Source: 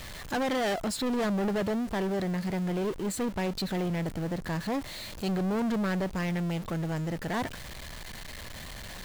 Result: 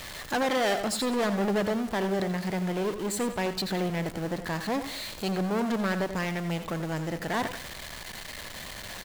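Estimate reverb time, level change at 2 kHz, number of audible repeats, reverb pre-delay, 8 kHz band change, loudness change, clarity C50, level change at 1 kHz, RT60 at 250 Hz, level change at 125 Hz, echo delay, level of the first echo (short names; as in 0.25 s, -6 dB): none, +4.0 dB, 2, none, +4.0 dB, +1.0 dB, none, +3.5 dB, none, -1.0 dB, 83 ms, -13.0 dB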